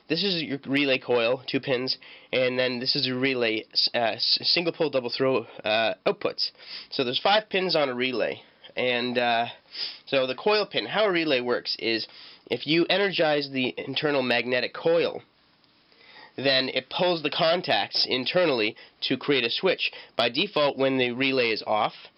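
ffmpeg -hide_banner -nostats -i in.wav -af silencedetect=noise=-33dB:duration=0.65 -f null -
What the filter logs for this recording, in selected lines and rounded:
silence_start: 15.18
silence_end: 16.38 | silence_duration: 1.20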